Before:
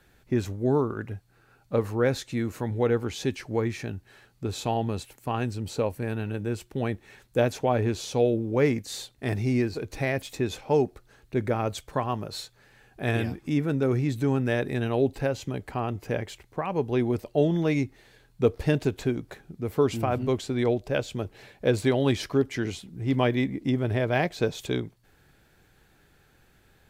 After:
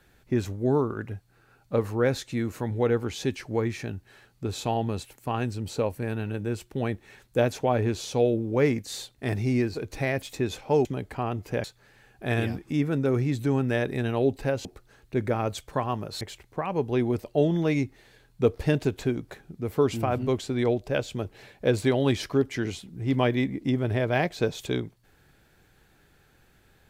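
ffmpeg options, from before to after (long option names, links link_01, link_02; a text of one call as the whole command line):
ffmpeg -i in.wav -filter_complex "[0:a]asplit=5[link_01][link_02][link_03][link_04][link_05];[link_01]atrim=end=10.852[link_06];[link_02]atrim=start=15.418:end=16.212[link_07];[link_03]atrim=start=12.408:end=15.422[link_08];[link_04]atrim=start=10.848:end=12.412[link_09];[link_05]atrim=start=16.208[link_10];[link_06][link_07]acrossfade=duration=0.004:curve1=hsin:curve2=hsin[link_11];[link_11][link_08]acrossfade=duration=0.004:curve1=hsin:curve2=hsin[link_12];[link_12][link_09]acrossfade=duration=0.004:curve1=hsin:curve2=hsin[link_13];[link_13][link_10]acrossfade=duration=0.004:curve1=hsin:curve2=hsin" out.wav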